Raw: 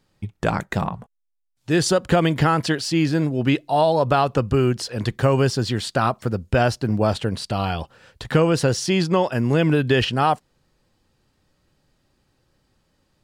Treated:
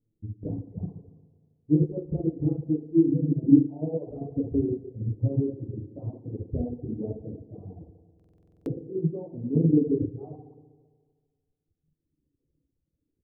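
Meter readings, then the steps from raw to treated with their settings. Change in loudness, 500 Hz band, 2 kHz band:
-6.5 dB, -11.5 dB, under -40 dB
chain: inverse Chebyshev low-pass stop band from 1.4 kHz, stop band 60 dB; feedback delay 277 ms, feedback 27%, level -14 dB; flange 0.19 Hz, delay 8.7 ms, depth 7.3 ms, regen +27%; FDN reverb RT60 1.8 s, low-frequency decay 0.8×, high-frequency decay 0.3×, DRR -3 dB; reverb removal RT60 1.7 s; buffer glitch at 8.15 s, samples 2048, times 10; upward expansion 1.5:1, over -27 dBFS

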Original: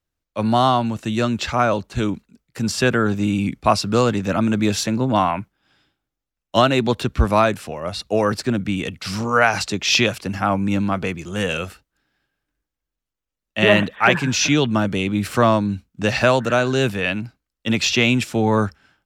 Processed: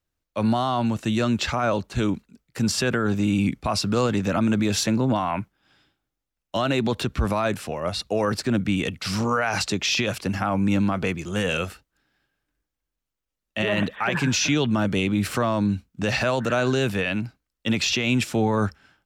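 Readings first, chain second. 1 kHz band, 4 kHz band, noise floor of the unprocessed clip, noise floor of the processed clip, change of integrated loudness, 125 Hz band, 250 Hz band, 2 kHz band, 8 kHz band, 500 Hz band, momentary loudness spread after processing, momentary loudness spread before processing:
-6.5 dB, -4.0 dB, -84 dBFS, -84 dBFS, -4.0 dB, -3.0 dB, -2.5 dB, -5.5 dB, -2.5 dB, -5.5 dB, 6 LU, 10 LU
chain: peak limiter -13.5 dBFS, peak gain reduction 11.5 dB

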